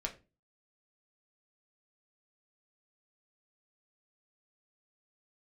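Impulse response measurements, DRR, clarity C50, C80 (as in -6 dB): 0.5 dB, 14.0 dB, 19.5 dB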